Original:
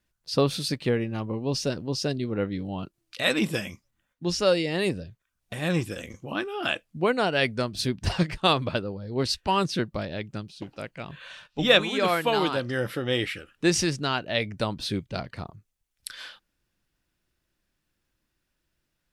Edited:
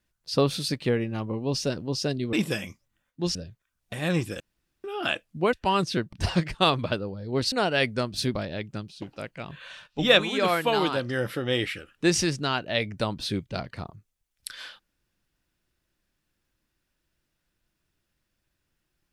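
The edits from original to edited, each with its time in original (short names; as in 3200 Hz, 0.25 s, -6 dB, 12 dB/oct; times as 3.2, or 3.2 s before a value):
2.33–3.36 cut
4.38–4.95 cut
6–6.44 room tone
7.13–7.96 swap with 9.35–9.95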